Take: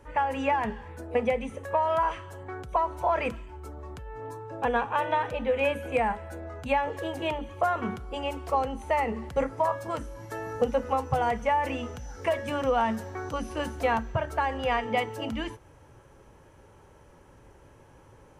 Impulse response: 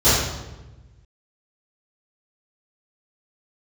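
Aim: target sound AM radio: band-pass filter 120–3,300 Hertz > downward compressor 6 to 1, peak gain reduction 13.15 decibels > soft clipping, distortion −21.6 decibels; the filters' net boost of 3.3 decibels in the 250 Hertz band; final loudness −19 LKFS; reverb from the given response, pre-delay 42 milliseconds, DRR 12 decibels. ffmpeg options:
-filter_complex "[0:a]equalizer=frequency=250:width_type=o:gain=4,asplit=2[link_01][link_02];[1:a]atrim=start_sample=2205,adelay=42[link_03];[link_02][link_03]afir=irnorm=-1:irlink=0,volume=-34.5dB[link_04];[link_01][link_04]amix=inputs=2:normalize=0,highpass=120,lowpass=3300,acompressor=threshold=-32dB:ratio=6,asoftclip=threshold=-25.5dB,volume=18.5dB"

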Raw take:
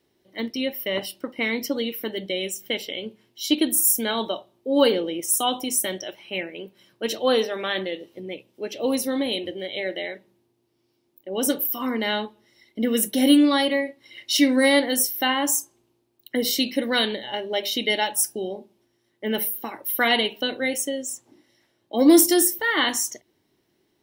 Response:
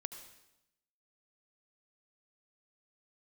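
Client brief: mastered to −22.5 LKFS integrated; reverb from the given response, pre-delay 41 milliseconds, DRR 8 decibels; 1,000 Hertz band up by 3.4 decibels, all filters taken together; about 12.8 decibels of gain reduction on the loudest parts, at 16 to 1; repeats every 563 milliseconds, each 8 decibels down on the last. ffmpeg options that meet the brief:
-filter_complex "[0:a]equalizer=frequency=1000:width_type=o:gain=4.5,acompressor=threshold=-22dB:ratio=16,aecho=1:1:563|1126|1689|2252|2815:0.398|0.159|0.0637|0.0255|0.0102,asplit=2[link_01][link_02];[1:a]atrim=start_sample=2205,adelay=41[link_03];[link_02][link_03]afir=irnorm=-1:irlink=0,volume=-5.5dB[link_04];[link_01][link_04]amix=inputs=2:normalize=0,volume=4.5dB"

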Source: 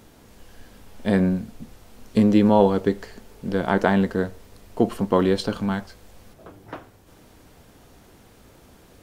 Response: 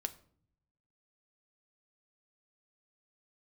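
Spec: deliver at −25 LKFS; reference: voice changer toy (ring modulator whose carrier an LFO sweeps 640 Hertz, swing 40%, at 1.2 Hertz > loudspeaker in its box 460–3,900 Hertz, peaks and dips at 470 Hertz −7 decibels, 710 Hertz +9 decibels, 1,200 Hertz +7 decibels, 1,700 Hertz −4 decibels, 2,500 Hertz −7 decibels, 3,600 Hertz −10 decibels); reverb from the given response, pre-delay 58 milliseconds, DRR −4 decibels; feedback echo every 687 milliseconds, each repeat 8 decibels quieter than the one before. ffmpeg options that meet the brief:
-filter_complex "[0:a]aecho=1:1:687|1374|2061|2748|3435:0.398|0.159|0.0637|0.0255|0.0102,asplit=2[link_01][link_02];[1:a]atrim=start_sample=2205,adelay=58[link_03];[link_02][link_03]afir=irnorm=-1:irlink=0,volume=4.5dB[link_04];[link_01][link_04]amix=inputs=2:normalize=0,aeval=exprs='val(0)*sin(2*PI*640*n/s+640*0.4/1.2*sin(2*PI*1.2*n/s))':channel_layout=same,highpass=460,equalizer=frequency=470:width_type=q:width=4:gain=-7,equalizer=frequency=710:width_type=q:width=4:gain=9,equalizer=frequency=1200:width_type=q:width=4:gain=7,equalizer=frequency=1700:width_type=q:width=4:gain=-4,equalizer=frequency=2500:width_type=q:width=4:gain=-7,equalizer=frequency=3600:width_type=q:width=4:gain=-10,lowpass=frequency=3900:width=0.5412,lowpass=frequency=3900:width=1.3066,volume=-8dB"

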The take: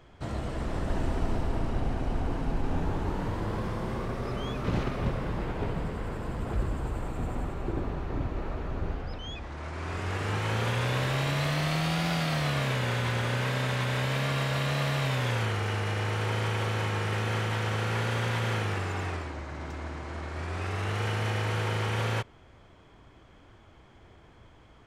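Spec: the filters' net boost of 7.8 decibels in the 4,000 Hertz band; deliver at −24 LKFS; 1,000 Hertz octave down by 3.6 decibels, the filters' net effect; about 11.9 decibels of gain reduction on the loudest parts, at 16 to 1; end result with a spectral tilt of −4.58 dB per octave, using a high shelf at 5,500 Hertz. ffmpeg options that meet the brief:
ffmpeg -i in.wav -af "equalizer=frequency=1000:width_type=o:gain=-5.5,equalizer=frequency=4000:width_type=o:gain=8.5,highshelf=frequency=5500:gain=5.5,acompressor=threshold=-35dB:ratio=16,volume=15.5dB" out.wav

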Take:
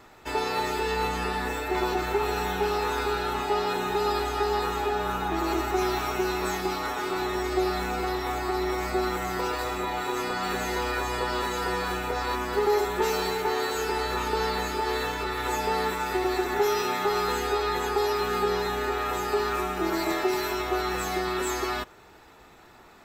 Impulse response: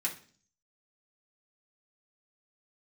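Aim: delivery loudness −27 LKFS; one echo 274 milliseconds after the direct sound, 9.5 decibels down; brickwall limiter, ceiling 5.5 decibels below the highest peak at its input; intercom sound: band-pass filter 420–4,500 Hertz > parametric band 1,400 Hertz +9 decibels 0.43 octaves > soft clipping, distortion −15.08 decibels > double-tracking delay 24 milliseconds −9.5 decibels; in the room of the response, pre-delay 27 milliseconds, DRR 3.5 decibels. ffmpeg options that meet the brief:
-filter_complex "[0:a]alimiter=limit=-18.5dB:level=0:latency=1,aecho=1:1:274:0.335,asplit=2[link_01][link_02];[1:a]atrim=start_sample=2205,adelay=27[link_03];[link_02][link_03]afir=irnorm=-1:irlink=0,volume=-7dB[link_04];[link_01][link_04]amix=inputs=2:normalize=0,highpass=420,lowpass=4500,equalizer=frequency=1400:width_type=o:width=0.43:gain=9,asoftclip=threshold=-22dB,asplit=2[link_05][link_06];[link_06]adelay=24,volume=-9.5dB[link_07];[link_05][link_07]amix=inputs=2:normalize=0,volume=0.5dB"

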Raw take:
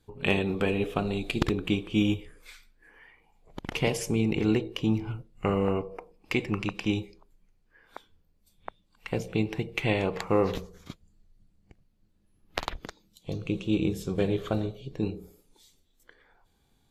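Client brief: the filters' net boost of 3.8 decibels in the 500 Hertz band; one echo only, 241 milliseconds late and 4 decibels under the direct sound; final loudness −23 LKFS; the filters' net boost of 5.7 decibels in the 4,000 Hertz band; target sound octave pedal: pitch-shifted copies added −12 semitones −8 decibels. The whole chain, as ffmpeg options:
ffmpeg -i in.wav -filter_complex "[0:a]equalizer=frequency=500:width_type=o:gain=4.5,equalizer=frequency=4000:width_type=o:gain=8,aecho=1:1:241:0.631,asplit=2[link_01][link_02];[link_02]asetrate=22050,aresample=44100,atempo=2,volume=-8dB[link_03];[link_01][link_03]amix=inputs=2:normalize=0,volume=2.5dB" out.wav

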